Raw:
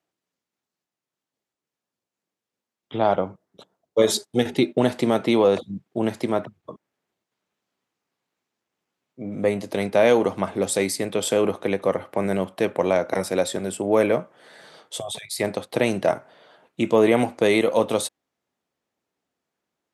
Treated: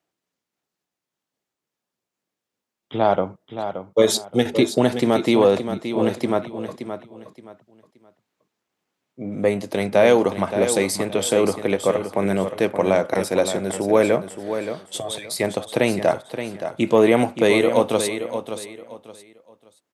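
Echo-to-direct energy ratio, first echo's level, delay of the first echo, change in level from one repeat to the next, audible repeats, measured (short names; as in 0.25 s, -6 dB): -9.0 dB, -9.5 dB, 0.573 s, -11.5 dB, 3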